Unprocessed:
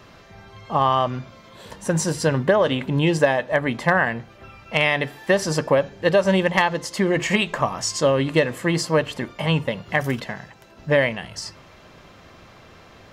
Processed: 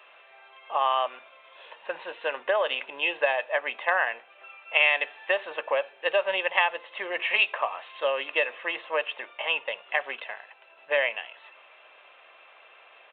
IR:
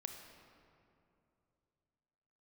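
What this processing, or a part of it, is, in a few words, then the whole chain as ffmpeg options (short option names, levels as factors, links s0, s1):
musical greeting card: -af "aresample=8000,aresample=44100,highpass=f=550:w=0.5412,highpass=f=550:w=1.3066,equalizer=f=2600:t=o:w=0.27:g=10,volume=0.562"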